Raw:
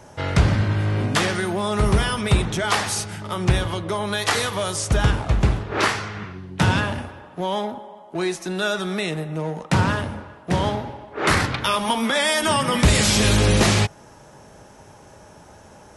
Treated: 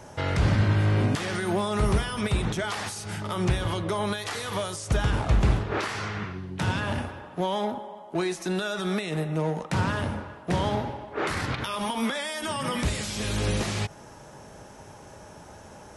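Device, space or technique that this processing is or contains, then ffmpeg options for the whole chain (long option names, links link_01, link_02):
de-esser from a sidechain: -filter_complex "[0:a]asplit=2[link_01][link_02];[link_02]highpass=frequency=4700:poles=1,apad=whole_len=703855[link_03];[link_01][link_03]sidechaincompress=threshold=-37dB:ratio=5:attack=5:release=77"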